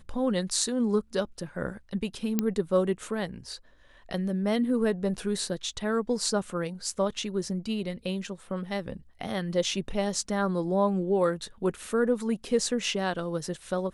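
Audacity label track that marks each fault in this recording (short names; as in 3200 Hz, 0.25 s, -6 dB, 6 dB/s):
2.390000	2.390000	pop -11 dBFS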